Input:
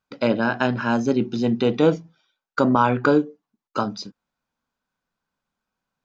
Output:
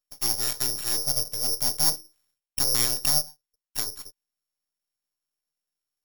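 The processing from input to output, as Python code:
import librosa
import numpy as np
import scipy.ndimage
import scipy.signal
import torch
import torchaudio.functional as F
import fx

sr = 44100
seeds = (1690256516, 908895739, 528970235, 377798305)

y = np.abs(x)
y = (np.kron(y[::8], np.eye(8)[0]) * 8)[:len(y)]
y = y * librosa.db_to_amplitude(-14.5)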